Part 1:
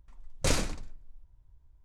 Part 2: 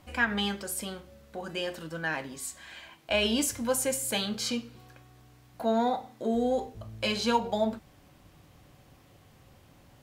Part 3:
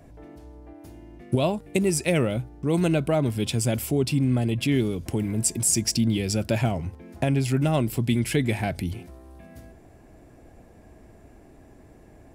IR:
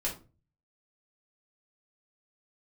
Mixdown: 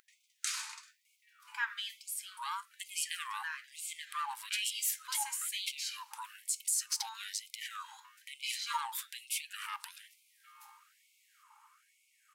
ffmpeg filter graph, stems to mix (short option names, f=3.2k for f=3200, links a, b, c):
-filter_complex "[0:a]acrossover=split=150[a][b];[b]acompressor=threshold=-42dB:ratio=5[c];[a][c]amix=inputs=2:normalize=0,volume=2dB,asplit=2[d][e];[e]volume=-3dB[f];[1:a]adelay=1400,volume=-8.5dB[g];[2:a]alimiter=limit=-20dB:level=0:latency=1:release=64,aeval=exprs='val(0)*sin(2*PI*560*n/s)':c=same,adelay=1050,volume=-3dB,asplit=2[h][i];[i]volume=-20dB[j];[3:a]atrim=start_sample=2205[k];[f][j]amix=inputs=2:normalize=0[l];[l][k]afir=irnorm=-1:irlink=0[m];[d][g][h][m]amix=inputs=4:normalize=0,highshelf=f=4.5k:g=4.5,acompressor=mode=upward:threshold=-55dB:ratio=2.5,afftfilt=real='re*gte(b*sr/1024,810*pow(2100/810,0.5+0.5*sin(2*PI*1.1*pts/sr)))':imag='im*gte(b*sr/1024,810*pow(2100/810,0.5+0.5*sin(2*PI*1.1*pts/sr)))':win_size=1024:overlap=0.75"